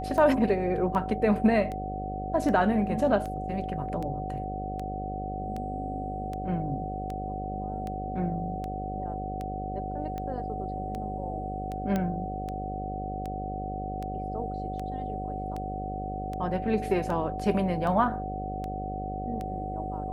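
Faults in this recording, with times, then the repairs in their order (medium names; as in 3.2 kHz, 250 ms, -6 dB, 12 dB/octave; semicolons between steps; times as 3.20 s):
buzz 50 Hz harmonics 13 -36 dBFS
tick 78 rpm -23 dBFS
whine 750 Hz -34 dBFS
11.96 s: pop -16 dBFS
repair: de-click; de-hum 50 Hz, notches 13; band-stop 750 Hz, Q 30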